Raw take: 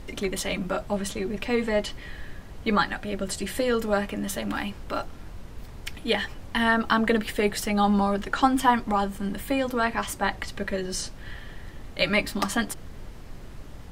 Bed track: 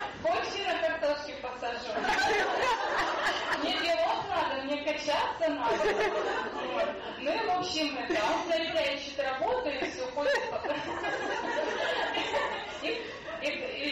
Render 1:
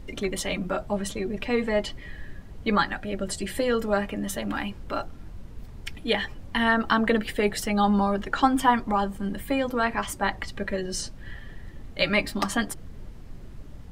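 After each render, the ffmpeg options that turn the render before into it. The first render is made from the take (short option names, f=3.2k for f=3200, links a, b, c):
-af "afftdn=nr=7:nf=-42"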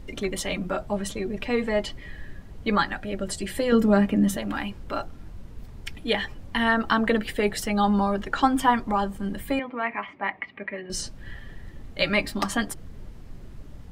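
-filter_complex "[0:a]asettb=1/sr,asplit=3[a][b][c];[a]atrim=end=3.724[d];[b]atrim=start=3.72:end=4.37,asetpts=PTS-STARTPTS,afade=t=in:d=0.004:c=qsin,afade=t=out:st=0.646:d=0.004:c=qsin,equalizer=f=220:t=o:w=1.4:g=11.5[e];[c]atrim=start=4.366[f];[d][e]acrossfade=d=0.004:c1=hsin:c2=qsin[g];[g][f]acrossfade=d=0.004:c1=qsin:c2=hsin,asettb=1/sr,asplit=3[h][i][j];[h]atrim=end=9.594[k];[i]atrim=start=9.59:end=10.9,asetpts=PTS-STARTPTS,afade=t=in:d=0.004:c=qsin,afade=t=out:st=1.306:d=0.004:c=qsin,highpass=300,equalizer=f=360:t=q:w=4:g=-5,equalizer=f=520:t=q:w=4:g=-9,equalizer=f=830:t=q:w=4:g=-3,equalizer=f=1.5k:t=q:w=4:g=-9,equalizer=f=2.2k:t=q:w=4:g=9,lowpass=f=2.4k:w=0.5412,lowpass=f=2.4k:w=1.3066[l];[j]atrim=start=10.896[m];[k][l]acrossfade=d=0.004:c1=hsin:c2=qsin[n];[n][m]acrossfade=d=0.004:c1=qsin:c2=hsin"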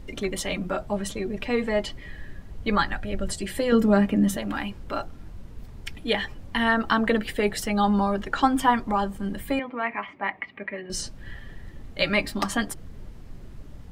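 -filter_complex "[0:a]asettb=1/sr,asplit=3[a][b][c];[a]atrim=end=2.324[d];[b]atrim=start=2.32:end=3.32,asetpts=PTS-STARTPTS,afade=t=in:d=0.004:c=qsin,afade=t=out:st=0.996:d=0.004:c=qsin,asubboost=boost=7.5:cutoff=140[e];[c]atrim=start=3.316[f];[d][e]acrossfade=d=0.004:c1=hsin:c2=qsin[g];[g][f]acrossfade=d=0.004:c1=qsin:c2=hsin"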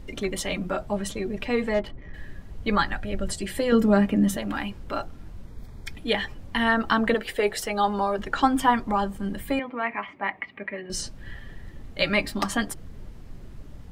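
-filter_complex "[0:a]asettb=1/sr,asplit=3[a][b][c];[a]atrim=end=1.744[d];[b]atrim=start=1.74:end=2.14,asetpts=PTS-STARTPTS,afade=t=in:d=0.004:c=qsin,afade=t=out:st=0.396:d=0.004:c=qsin,adynamicsmooth=sensitivity=2.5:basefreq=1.2k[e];[c]atrim=start=2.136[f];[d][e]acrossfade=d=0.004:c1=hsin:c2=qsin[g];[g][f]acrossfade=d=0.004:c1=qsin:c2=hsin,asettb=1/sr,asplit=3[h][i][j];[h]atrim=end=5.464[k];[i]atrim=start=5.46:end=5.91,asetpts=PTS-STARTPTS,afade=t=in:d=0.004:c=qsin,afade=t=out:st=0.446:d=0.004:c=qsin,asuperstop=centerf=2800:order=12:qfactor=4.9[l];[j]atrim=start=5.906[m];[k][l]acrossfade=d=0.004:c1=hsin:c2=qsin[n];[n][m]acrossfade=d=0.004:c1=qsin:c2=hsin,asettb=1/sr,asplit=3[o][p][q];[o]atrim=end=7.144[r];[p]atrim=start=7.14:end=8.19,asetpts=PTS-STARTPTS,afade=t=in:d=0.004:c=qsin,afade=t=out:st=1.046:d=0.004:c=qsin,lowshelf=f=320:t=q:w=1.5:g=-7[s];[q]atrim=start=8.186[t];[r][s]acrossfade=d=0.004:c1=hsin:c2=qsin[u];[u][t]acrossfade=d=0.004:c1=qsin:c2=hsin"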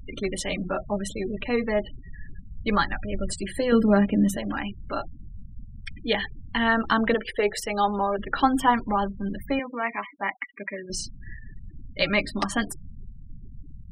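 -af "afftfilt=real='re*gte(hypot(re,im),0.02)':imag='im*gte(hypot(re,im),0.02)':win_size=1024:overlap=0.75"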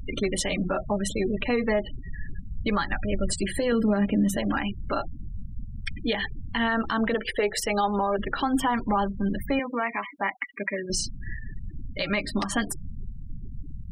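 -filter_complex "[0:a]asplit=2[a][b];[b]acompressor=threshold=-30dB:ratio=6,volume=-1.5dB[c];[a][c]amix=inputs=2:normalize=0,alimiter=limit=-15.5dB:level=0:latency=1:release=117"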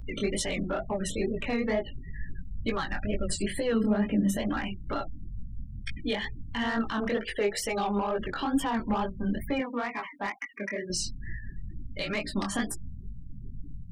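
-filter_complex "[0:a]flanger=delay=17:depth=8:speed=2.2,acrossover=split=550|3800[a][b][c];[b]asoftclip=type=tanh:threshold=-27.5dB[d];[a][d][c]amix=inputs=3:normalize=0"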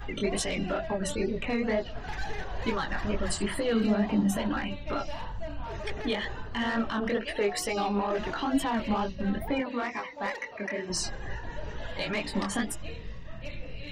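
-filter_complex "[1:a]volume=-11.5dB[a];[0:a][a]amix=inputs=2:normalize=0"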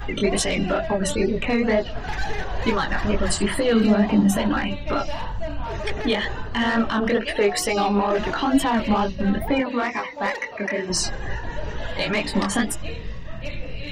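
-af "volume=8dB"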